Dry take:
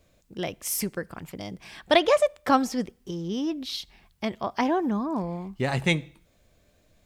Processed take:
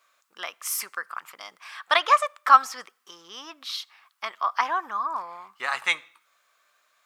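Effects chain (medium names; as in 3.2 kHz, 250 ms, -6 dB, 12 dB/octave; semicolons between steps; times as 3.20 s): resonant high-pass 1.2 kHz, resonance Q 4.8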